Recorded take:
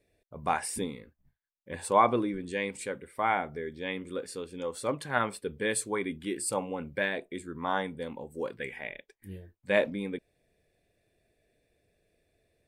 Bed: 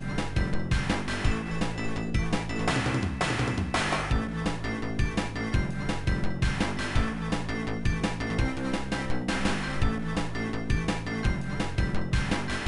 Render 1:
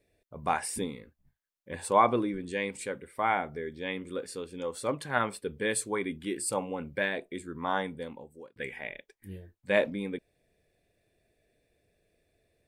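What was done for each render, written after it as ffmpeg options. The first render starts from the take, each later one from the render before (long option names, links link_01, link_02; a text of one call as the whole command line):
ffmpeg -i in.wav -filter_complex "[0:a]asplit=2[link_01][link_02];[link_01]atrim=end=8.56,asetpts=PTS-STARTPTS,afade=type=out:start_time=7.92:duration=0.64[link_03];[link_02]atrim=start=8.56,asetpts=PTS-STARTPTS,afade=type=in:duration=0.004:curve=hsin[link_04];[link_03][link_04]concat=n=2:v=0:a=1" out.wav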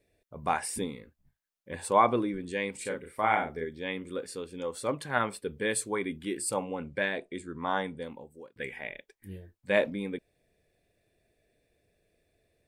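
ffmpeg -i in.wav -filter_complex "[0:a]asettb=1/sr,asplit=3[link_01][link_02][link_03];[link_01]atrim=end=2.814[link_04];[link_02]atrim=start=2.81:end=3.65,asetpts=PTS-STARTPTS,afade=type=in:duration=0.004:curve=qsin,afade=type=out:start_time=0.836:duration=0.004:curve=qsin,asplit=2[link_05][link_06];[link_06]adelay=37,volume=-4dB[link_07];[link_05][link_07]amix=inputs=2:normalize=0,atrim=end_sample=37044[link_08];[link_03]atrim=start=3.646[link_09];[link_04][link_08]acrossfade=duration=0.004:curve1=hsin:curve2=qsin[link_10];[link_10][link_09]acrossfade=duration=0.004:curve1=qsin:curve2=hsin,asettb=1/sr,asplit=3[link_11][link_12][link_13];[link_11]atrim=end=6.624[link_14];[link_12]atrim=start=6.62:end=8.04,asetpts=PTS-STARTPTS,afade=type=in:duration=0.004:curve=qsin,afade=type=out:start_time=1.416:duration=0.004:curve=qsin,lowpass=frequency=10000:width=0.5412,lowpass=frequency=10000:width=1.3066[link_15];[link_13]atrim=start=8.036[link_16];[link_14][link_15]acrossfade=duration=0.004:curve1=hsin:curve2=qsin[link_17];[link_17][link_16]acrossfade=duration=0.004:curve1=qsin:curve2=hsin" out.wav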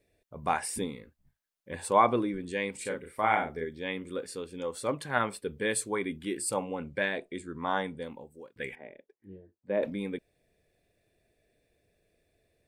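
ffmpeg -i in.wav -filter_complex "[0:a]asettb=1/sr,asplit=3[link_01][link_02][link_03];[link_01]atrim=end=8.754[link_04];[link_02]atrim=start=8.75:end=9.83,asetpts=PTS-STARTPTS,afade=type=in:duration=0.004:curve=qsin,afade=type=out:start_time=1.076:duration=0.004:curve=qsin,bandpass=frequency=350:width_type=q:width=1[link_05];[link_03]atrim=start=9.826[link_06];[link_04][link_05]acrossfade=duration=0.004:curve1=hsin:curve2=qsin[link_07];[link_07][link_06]acrossfade=duration=0.004:curve1=qsin:curve2=hsin" out.wav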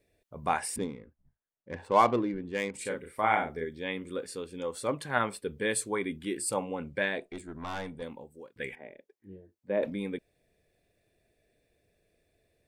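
ffmpeg -i in.wav -filter_complex "[0:a]asettb=1/sr,asplit=3[link_01][link_02][link_03];[link_01]atrim=end=0.764[link_04];[link_02]atrim=start=0.76:end=2.74,asetpts=PTS-STARTPTS,afade=type=in:duration=0.004:curve=qsin,afade=type=out:start_time=1.976:duration=0.004:curve=qsin,adynamicsmooth=sensitivity=5:basefreq=1500[link_05];[link_03]atrim=start=2.736[link_06];[link_04][link_05]acrossfade=duration=0.004:curve1=hsin:curve2=qsin[link_07];[link_07][link_06]acrossfade=duration=0.004:curve1=qsin:curve2=hsin,asettb=1/sr,asplit=3[link_08][link_09][link_10];[link_08]atrim=end=7.274[link_11];[link_09]atrim=start=7.27:end=8.02,asetpts=PTS-STARTPTS,afade=type=in:duration=0.004:curve=qsin,afade=type=out:start_time=0.746:duration=0.004:curve=qsin,aeval=exprs='(tanh(39.8*val(0)+0.4)-tanh(0.4))/39.8':channel_layout=same[link_12];[link_10]atrim=start=8.016[link_13];[link_11][link_12]acrossfade=duration=0.004:curve1=hsin:curve2=qsin[link_14];[link_14][link_13]acrossfade=duration=0.004:curve1=qsin:curve2=hsin" out.wav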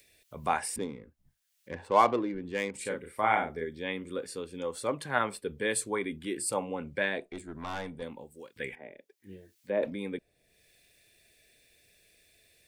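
ffmpeg -i in.wav -filter_complex "[0:a]acrossover=split=260|2000[link_01][link_02][link_03];[link_01]alimiter=level_in=14dB:limit=-24dB:level=0:latency=1,volume=-14dB[link_04];[link_03]acompressor=mode=upward:threshold=-50dB:ratio=2.5[link_05];[link_04][link_02][link_05]amix=inputs=3:normalize=0" out.wav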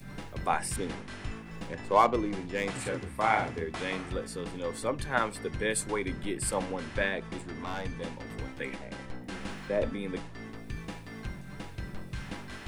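ffmpeg -i in.wav -i bed.wav -filter_complex "[1:a]volume=-12dB[link_01];[0:a][link_01]amix=inputs=2:normalize=0" out.wav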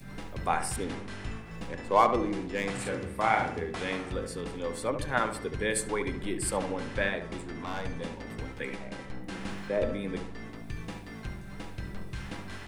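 ffmpeg -i in.wav -filter_complex "[0:a]asplit=2[link_01][link_02];[link_02]adelay=71,lowpass=frequency=1500:poles=1,volume=-7dB,asplit=2[link_03][link_04];[link_04]adelay=71,lowpass=frequency=1500:poles=1,volume=0.49,asplit=2[link_05][link_06];[link_06]adelay=71,lowpass=frequency=1500:poles=1,volume=0.49,asplit=2[link_07][link_08];[link_08]adelay=71,lowpass=frequency=1500:poles=1,volume=0.49,asplit=2[link_09][link_10];[link_10]adelay=71,lowpass=frequency=1500:poles=1,volume=0.49,asplit=2[link_11][link_12];[link_12]adelay=71,lowpass=frequency=1500:poles=1,volume=0.49[link_13];[link_01][link_03][link_05][link_07][link_09][link_11][link_13]amix=inputs=7:normalize=0" out.wav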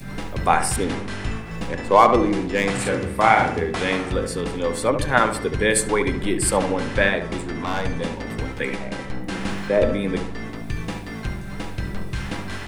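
ffmpeg -i in.wav -af "volume=10.5dB,alimiter=limit=-1dB:level=0:latency=1" out.wav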